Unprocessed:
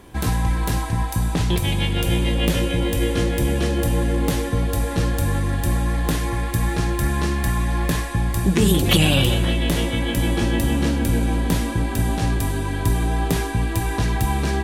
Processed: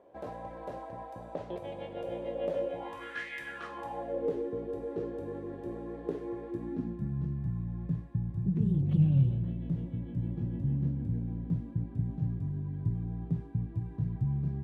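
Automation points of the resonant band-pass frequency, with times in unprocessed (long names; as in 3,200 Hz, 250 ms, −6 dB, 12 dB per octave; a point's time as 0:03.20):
resonant band-pass, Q 5.5
0:02.69 580 Hz
0:03.30 2,200 Hz
0:04.35 410 Hz
0:06.46 410 Hz
0:07.19 140 Hz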